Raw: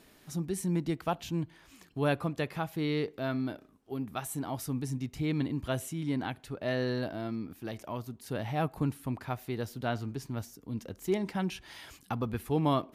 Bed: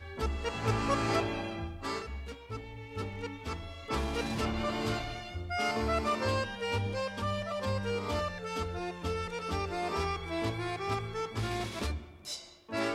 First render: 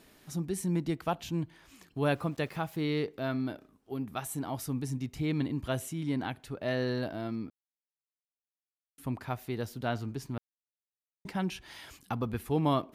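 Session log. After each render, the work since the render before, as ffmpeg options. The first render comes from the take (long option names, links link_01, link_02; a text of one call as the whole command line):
ffmpeg -i in.wav -filter_complex "[0:a]asettb=1/sr,asplit=3[link_01][link_02][link_03];[link_01]atrim=end=2.014[link_04];[link_02]atrim=start=2.01:end=3.02,asetpts=PTS-STARTPTS,afade=type=in:duration=0.004:curve=qsin,afade=type=out:start_time=1.006:duration=0.004:curve=qsin,aeval=exprs='val(0)*gte(abs(val(0)),0.00188)':channel_layout=same[link_05];[link_03]atrim=start=3.016[link_06];[link_04][link_05]acrossfade=duration=0.004:curve1=hsin:curve2=qsin[link_07];[link_07][link_06]acrossfade=duration=0.004:curve1=qsin:curve2=hsin,asplit=5[link_08][link_09][link_10][link_11][link_12];[link_08]atrim=end=7.5,asetpts=PTS-STARTPTS,afade=type=out:start_time=7.496:duration=0.004:curve=hsin[link_13];[link_09]atrim=start=7.5:end=8.98,asetpts=PTS-STARTPTS,volume=0[link_14];[link_10]atrim=start=8.98:end=10.38,asetpts=PTS-STARTPTS,afade=type=in:duration=0.004:curve=hsin,afade=type=out:start_time=1.396:duration=0.004:curve=hsin[link_15];[link_11]atrim=start=10.38:end=11.25,asetpts=PTS-STARTPTS,volume=0[link_16];[link_12]atrim=start=11.25,asetpts=PTS-STARTPTS,afade=type=in:duration=0.004:curve=hsin[link_17];[link_13][link_14][link_15][link_16][link_17]concat=n=5:v=0:a=1" out.wav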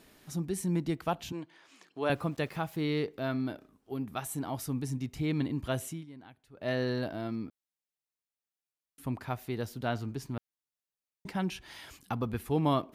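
ffmpeg -i in.wav -filter_complex "[0:a]asettb=1/sr,asplit=3[link_01][link_02][link_03];[link_01]atrim=end=1.324[link_04];[link_02]atrim=start=1.32:end=2.1,asetpts=PTS-STARTPTS,afade=type=in:duration=0.004:curve=qsin,afade=type=out:start_time=0.776:duration=0.004:curve=qsin,highpass=350,lowpass=6900[link_05];[link_03]atrim=start=2.096[link_06];[link_04][link_05]acrossfade=duration=0.004:curve1=hsin:curve2=qsin[link_07];[link_07][link_06]acrossfade=duration=0.004:curve1=qsin:curve2=hsin,asplit=3[link_08][link_09][link_10];[link_08]atrim=end=6.06,asetpts=PTS-STARTPTS,afade=type=out:start_time=5.9:duration=0.16:silence=0.133352[link_11];[link_09]atrim=start=6.06:end=6.53,asetpts=PTS-STARTPTS,volume=-17.5dB[link_12];[link_10]atrim=start=6.53,asetpts=PTS-STARTPTS,afade=type=in:duration=0.16:silence=0.133352[link_13];[link_11][link_12][link_13]concat=n=3:v=0:a=1" out.wav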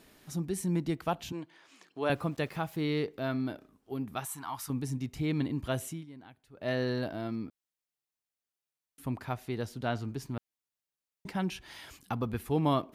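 ffmpeg -i in.wav -filter_complex "[0:a]asettb=1/sr,asplit=3[link_01][link_02][link_03];[link_01]atrim=end=4.254[link_04];[link_02]atrim=start=4.25:end=4.7,asetpts=PTS-STARTPTS,afade=type=in:duration=0.004:curve=qsin,afade=type=out:start_time=0.446:duration=0.004:curve=qsin,lowshelf=frequency=740:width_type=q:width=3:gain=-10.5[link_05];[link_03]atrim=start=4.696[link_06];[link_04][link_05]acrossfade=duration=0.004:curve1=hsin:curve2=qsin[link_07];[link_07][link_06]acrossfade=duration=0.004:curve1=qsin:curve2=hsin,asettb=1/sr,asplit=3[link_08][link_09][link_10];[link_08]atrim=end=9.334[link_11];[link_09]atrim=start=9.33:end=10.04,asetpts=PTS-STARTPTS,afade=type=in:duration=0.004:curve=qsin,afade=type=out:start_time=0.706:duration=0.004:curve=qsin,lowpass=11000[link_12];[link_10]atrim=start=10.036[link_13];[link_11][link_12]acrossfade=duration=0.004:curve1=hsin:curve2=qsin[link_14];[link_14][link_13]acrossfade=duration=0.004:curve1=qsin:curve2=hsin" out.wav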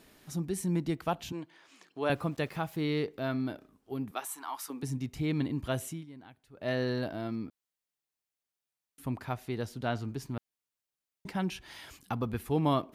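ffmpeg -i in.wav -filter_complex "[0:a]asettb=1/sr,asplit=3[link_01][link_02][link_03];[link_01]atrim=end=4.114[link_04];[link_02]atrim=start=4.11:end=4.83,asetpts=PTS-STARTPTS,afade=type=in:duration=0.004:curve=qsin,afade=type=out:start_time=0.716:duration=0.004:curve=qsin,highpass=frequency=300:width=0.5412,highpass=frequency=300:width=1.3066[link_05];[link_03]atrim=start=4.826[link_06];[link_04][link_05]acrossfade=duration=0.004:curve1=hsin:curve2=qsin[link_07];[link_07][link_06]acrossfade=duration=0.004:curve1=qsin:curve2=hsin" out.wav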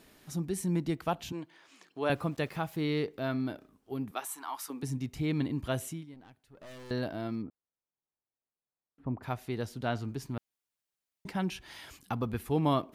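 ffmpeg -i in.wav -filter_complex "[0:a]asettb=1/sr,asplit=3[link_01][link_02][link_03];[link_01]atrim=end=6.144[link_04];[link_02]atrim=start=6.14:end=6.91,asetpts=PTS-STARTPTS,afade=type=in:duration=0.004:curve=qsin,afade=type=out:start_time=0.766:duration=0.004:curve=qsin,aeval=exprs='(tanh(224*val(0)+0.4)-tanh(0.4))/224':channel_layout=same[link_05];[link_03]atrim=start=6.906[link_06];[link_04][link_05]acrossfade=duration=0.004:curve1=hsin:curve2=qsin[link_07];[link_07][link_06]acrossfade=duration=0.004:curve1=qsin:curve2=hsin,asplit=3[link_08][link_09][link_10];[link_08]afade=type=out:start_time=7.41:duration=0.02[link_11];[link_09]lowpass=1000,afade=type=in:start_time=7.41:duration=0.02,afade=type=out:start_time=9.22:duration=0.02[link_12];[link_10]afade=type=in:start_time=9.22:duration=0.02[link_13];[link_11][link_12][link_13]amix=inputs=3:normalize=0" out.wav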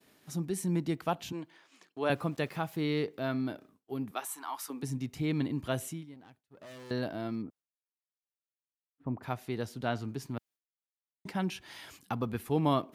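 ffmpeg -i in.wav -af "agate=range=-33dB:threshold=-55dB:ratio=3:detection=peak,highpass=100" out.wav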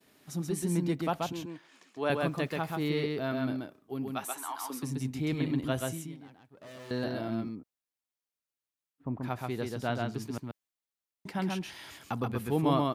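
ffmpeg -i in.wav -af "aecho=1:1:132:0.708" out.wav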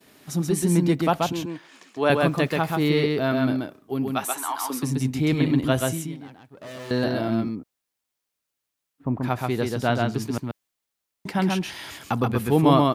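ffmpeg -i in.wav -af "volume=9.5dB" out.wav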